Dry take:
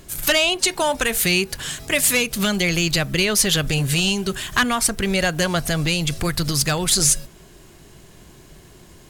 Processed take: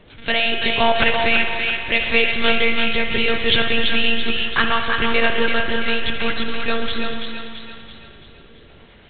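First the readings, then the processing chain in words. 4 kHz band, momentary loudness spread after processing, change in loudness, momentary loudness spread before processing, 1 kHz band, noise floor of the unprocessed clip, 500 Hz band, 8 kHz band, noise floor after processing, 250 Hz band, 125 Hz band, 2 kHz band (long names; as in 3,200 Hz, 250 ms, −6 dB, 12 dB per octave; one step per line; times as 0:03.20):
+1.5 dB, 9 LU, +0.5 dB, 6 LU, +4.0 dB, −47 dBFS, +2.0 dB, below −40 dB, −46 dBFS, −2.0 dB, −10.5 dB, +4.0 dB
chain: low-shelf EQ 180 Hz −11 dB
rotating-speaker cabinet horn 0.75 Hz
one-pitch LPC vocoder at 8 kHz 230 Hz
feedback echo with a high-pass in the loop 335 ms, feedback 51%, high-pass 520 Hz, level −4.5 dB
spring reverb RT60 2.3 s, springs 58 ms, chirp 30 ms, DRR 5 dB
level +5 dB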